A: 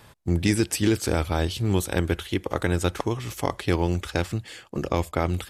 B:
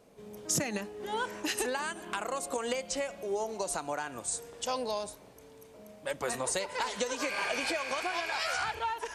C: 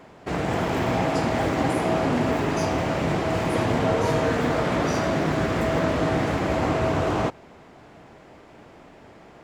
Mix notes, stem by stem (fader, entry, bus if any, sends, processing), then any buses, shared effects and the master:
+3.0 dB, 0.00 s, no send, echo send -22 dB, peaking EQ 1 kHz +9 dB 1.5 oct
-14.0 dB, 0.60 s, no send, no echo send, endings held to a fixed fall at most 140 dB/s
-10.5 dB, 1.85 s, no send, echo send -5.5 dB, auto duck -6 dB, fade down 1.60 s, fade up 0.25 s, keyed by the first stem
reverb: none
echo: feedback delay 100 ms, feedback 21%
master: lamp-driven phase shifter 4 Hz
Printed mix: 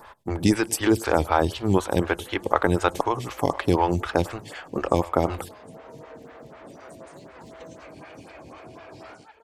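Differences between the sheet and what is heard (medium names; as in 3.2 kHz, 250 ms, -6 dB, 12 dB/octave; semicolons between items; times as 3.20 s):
stem B: missing endings held to a fixed fall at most 140 dB/s; stem C -10.5 dB -> -20.5 dB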